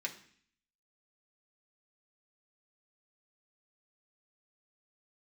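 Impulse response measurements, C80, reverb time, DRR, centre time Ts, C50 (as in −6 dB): 15.5 dB, 0.55 s, −0.5 dB, 11 ms, 12.5 dB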